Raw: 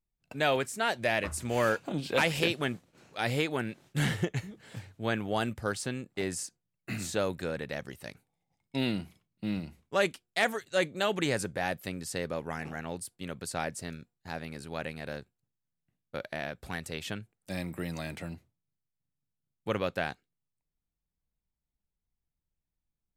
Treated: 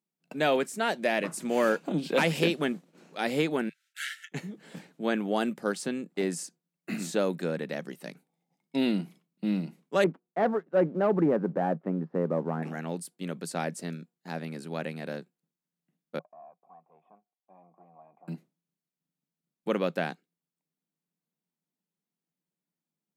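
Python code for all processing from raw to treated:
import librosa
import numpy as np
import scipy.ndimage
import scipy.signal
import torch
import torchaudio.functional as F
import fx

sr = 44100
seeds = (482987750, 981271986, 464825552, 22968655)

y = fx.chain(x, sr, fx.brickwall_highpass(low_hz=1300.0),
    fx.upward_expand(threshold_db=-48.0, expansion=1.5), at=(3.69, 4.32))
y = fx.chain(y, sr, fx.lowpass(hz=1300.0, slope=24),
    fx.leveller(passes=1), at=(10.04, 12.63))
y = fx.chain(y, sr, fx.tube_stage(drive_db=34.0, bias=0.6),
    fx.formant_cascade(vowel='a'), at=(16.19, 18.28))
y = scipy.signal.sosfilt(scipy.signal.ellip(4, 1.0, 40, 160.0, 'highpass', fs=sr, output='sos'), y)
y = fx.peak_eq(y, sr, hz=210.0, db=6.0, octaves=2.9)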